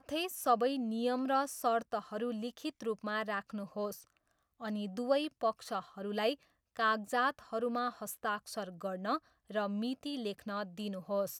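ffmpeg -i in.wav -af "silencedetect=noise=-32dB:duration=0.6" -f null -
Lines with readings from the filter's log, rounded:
silence_start: 3.88
silence_end: 4.64 | silence_duration: 0.77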